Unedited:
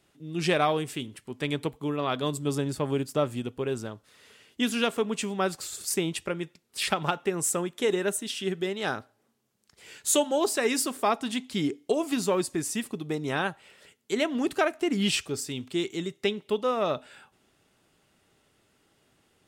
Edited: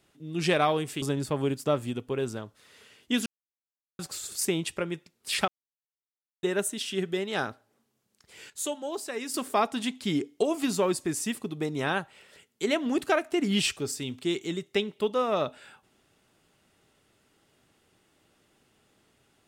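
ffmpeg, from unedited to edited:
-filter_complex "[0:a]asplit=8[s0][s1][s2][s3][s4][s5][s6][s7];[s0]atrim=end=1.022[s8];[s1]atrim=start=2.508:end=4.75,asetpts=PTS-STARTPTS,afade=t=out:st=2.238:d=0.004:c=hsin[s9];[s2]atrim=start=4.75:end=5.48,asetpts=PTS-STARTPTS,volume=0[s10];[s3]atrim=start=5.48:end=6.97,asetpts=PTS-STARTPTS,afade=t=in:d=0.004:c=hsin,afade=t=out:st=1.486:d=0.004:c=hsin[s11];[s4]atrim=start=6.97:end=7.92,asetpts=PTS-STARTPTS,volume=0[s12];[s5]atrim=start=7.92:end=9.992,asetpts=PTS-STARTPTS,afade=t=in:d=0.004:c=hsin[s13];[s6]atrim=start=9.988:end=10.832,asetpts=PTS-STARTPTS,volume=0.355[s14];[s7]atrim=start=10.828[s15];[s9][s10][s11][s12][s13]concat=n=5:v=0:a=1[s16];[s8][s16]acrossfade=d=0.004:c1=hsin:c2=hsin[s17];[s17][s14]acrossfade=d=0.004:c1=hsin:c2=hsin[s18];[s18][s15]acrossfade=d=0.004:c1=hsin:c2=hsin"

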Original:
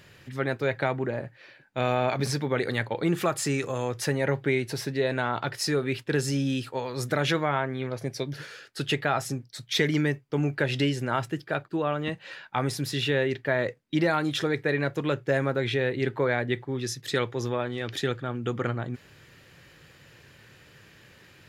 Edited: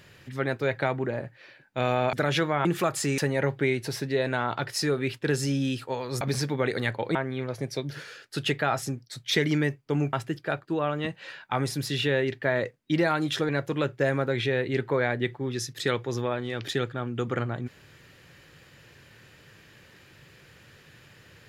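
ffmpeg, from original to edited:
-filter_complex "[0:a]asplit=8[s0][s1][s2][s3][s4][s5][s6][s7];[s0]atrim=end=2.132[s8];[s1]atrim=start=7.058:end=7.582[s9];[s2]atrim=start=3.068:end=3.602[s10];[s3]atrim=start=4.028:end=7.062[s11];[s4]atrim=start=2.128:end=3.072[s12];[s5]atrim=start=7.578:end=10.562[s13];[s6]atrim=start=11.158:end=14.522[s14];[s7]atrim=start=14.768[s15];[s8][s9]acrossfade=d=0.004:c1=hsin:c2=hsin[s16];[s16][s10]acrossfade=d=0.004:c1=hsin:c2=hsin[s17];[s17][s11]acrossfade=d=0.004:c1=hsin:c2=hsin[s18];[s18][s12]acrossfade=d=0.004:c1=hsin:c2=hsin[s19];[s19][s13]acrossfade=d=0.004:c1=hsin:c2=hsin[s20];[s20][s14]acrossfade=d=0.004:c1=hsin:c2=hsin[s21];[s21][s15]acrossfade=d=0.004:c1=hsin:c2=hsin"

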